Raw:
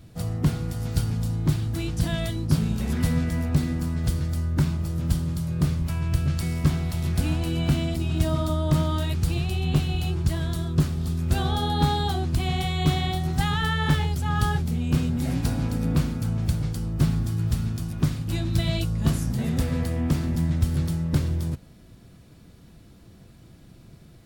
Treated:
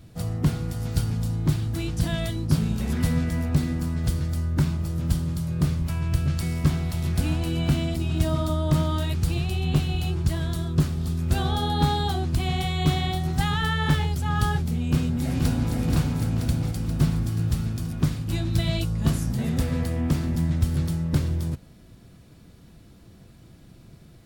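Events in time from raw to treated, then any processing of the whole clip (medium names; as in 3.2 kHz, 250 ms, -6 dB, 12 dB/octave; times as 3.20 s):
14.86–15.75 s: echo throw 480 ms, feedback 65%, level -3.5 dB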